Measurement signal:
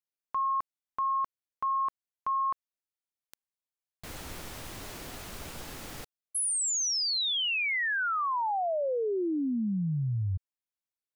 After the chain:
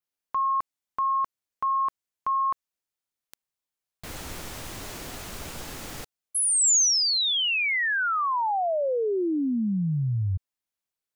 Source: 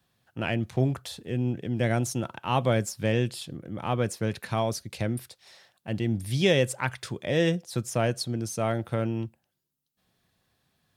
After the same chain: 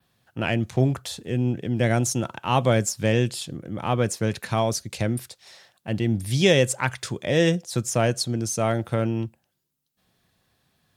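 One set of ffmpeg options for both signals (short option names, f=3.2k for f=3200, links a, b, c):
-af "adynamicequalizer=threshold=0.00282:dfrequency=6900:dqfactor=1.8:tfrequency=6900:tqfactor=1.8:attack=5:release=100:ratio=0.375:range=3:mode=boostabove:tftype=bell,volume=4dB"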